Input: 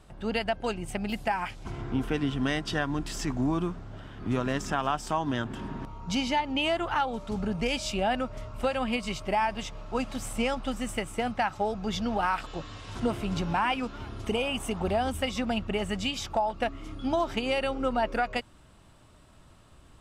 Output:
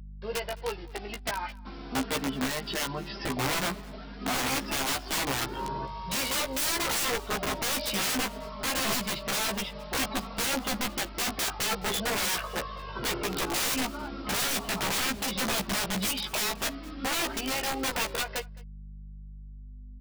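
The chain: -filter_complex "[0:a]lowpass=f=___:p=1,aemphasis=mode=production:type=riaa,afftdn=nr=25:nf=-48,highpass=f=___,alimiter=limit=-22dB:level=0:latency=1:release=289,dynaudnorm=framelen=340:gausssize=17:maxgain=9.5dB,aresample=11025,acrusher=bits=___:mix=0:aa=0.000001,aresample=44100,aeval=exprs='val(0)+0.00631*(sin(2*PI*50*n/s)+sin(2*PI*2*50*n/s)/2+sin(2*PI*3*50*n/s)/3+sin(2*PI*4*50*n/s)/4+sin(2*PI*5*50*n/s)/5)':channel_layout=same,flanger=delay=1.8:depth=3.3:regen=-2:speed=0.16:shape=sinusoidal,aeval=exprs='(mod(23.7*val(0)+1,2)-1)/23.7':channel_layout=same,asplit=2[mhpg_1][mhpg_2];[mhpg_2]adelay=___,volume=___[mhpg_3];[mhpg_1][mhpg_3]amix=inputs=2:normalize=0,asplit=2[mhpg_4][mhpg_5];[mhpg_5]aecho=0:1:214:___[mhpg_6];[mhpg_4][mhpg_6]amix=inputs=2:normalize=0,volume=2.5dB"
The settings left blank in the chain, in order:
1000, 100, 7, 15, -4dB, 0.0708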